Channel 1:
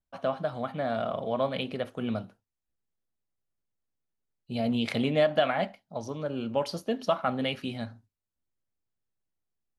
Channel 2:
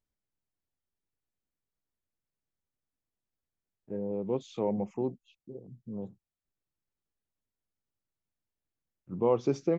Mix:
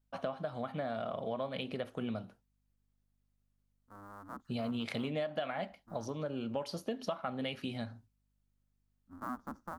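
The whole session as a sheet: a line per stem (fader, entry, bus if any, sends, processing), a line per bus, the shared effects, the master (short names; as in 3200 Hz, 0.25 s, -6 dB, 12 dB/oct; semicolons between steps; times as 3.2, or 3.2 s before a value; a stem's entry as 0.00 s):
+0.5 dB, 0.00 s, no send, dry
-19.0 dB, 0.00 s, no send, cycle switcher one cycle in 2, inverted; EQ curve 160 Hz 0 dB, 250 Hz +11 dB, 420 Hz -10 dB, 1300 Hz +13 dB, 2500 Hz -19 dB, 11000 Hz -4 dB; hum 50 Hz, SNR 27 dB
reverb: off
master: compressor 4:1, threshold -35 dBFS, peak gain reduction 14 dB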